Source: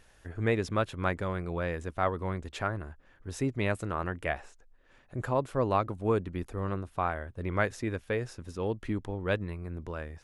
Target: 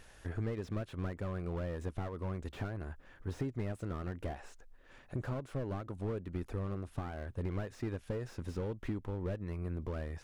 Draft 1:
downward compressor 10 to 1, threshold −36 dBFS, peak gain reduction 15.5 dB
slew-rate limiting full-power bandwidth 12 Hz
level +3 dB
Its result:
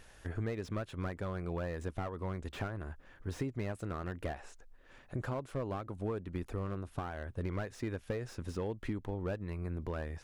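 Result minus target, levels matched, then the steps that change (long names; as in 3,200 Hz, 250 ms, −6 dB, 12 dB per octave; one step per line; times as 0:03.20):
slew-rate limiting: distortion −5 dB
change: slew-rate limiting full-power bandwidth 6 Hz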